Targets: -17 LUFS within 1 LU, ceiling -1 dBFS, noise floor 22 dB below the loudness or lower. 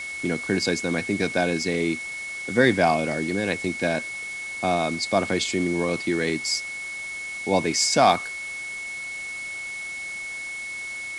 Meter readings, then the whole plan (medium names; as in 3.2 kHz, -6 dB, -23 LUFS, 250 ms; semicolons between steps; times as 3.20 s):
steady tone 2.2 kHz; tone level -31 dBFS; noise floor -34 dBFS; noise floor target -47 dBFS; loudness -25.0 LUFS; peak level -5.0 dBFS; loudness target -17.0 LUFS
-> band-stop 2.2 kHz, Q 30; noise reduction 13 dB, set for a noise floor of -34 dBFS; trim +8 dB; peak limiter -1 dBFS